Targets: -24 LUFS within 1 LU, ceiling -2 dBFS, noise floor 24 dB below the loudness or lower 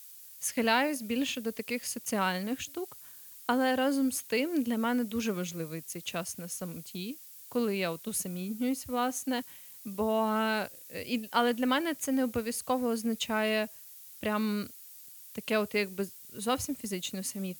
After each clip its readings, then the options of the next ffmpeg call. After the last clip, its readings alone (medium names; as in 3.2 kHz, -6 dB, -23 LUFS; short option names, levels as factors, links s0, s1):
noise floor -50 dBFS; noise floor target -56 dBFS; loudness -32.0 LUFS; peak level -11.5 dBFS; loudness target -24.0 LUFS
-> -af "afftdn=nr=6:nf=-50"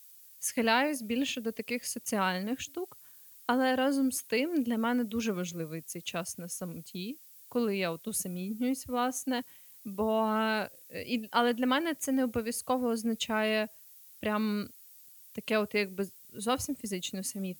noise floor -54 dBFS; noise floor target -56 dBFS
-> -af "afftdn=nr=6:nf=-54"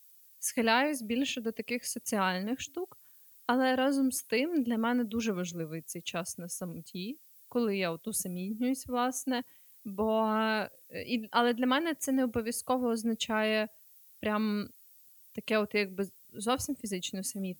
noise floor -58 dBFS; loudness -32.0 LUFS; peak level -11.5 dBFS; loudness target -24.0 LUFS
-> -af "volume=2.51"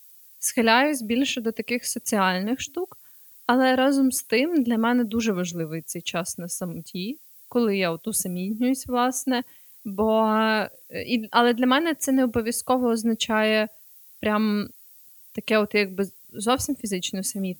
loudness -24.0 LUFS; peak level -3.5 dBFS; noise floor -50 dBFS